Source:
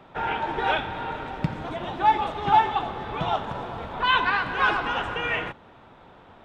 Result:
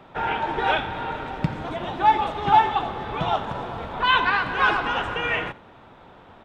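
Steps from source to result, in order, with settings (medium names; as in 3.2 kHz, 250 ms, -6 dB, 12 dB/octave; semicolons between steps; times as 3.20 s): delay 86 ms -21.5 dB; trim +2 dB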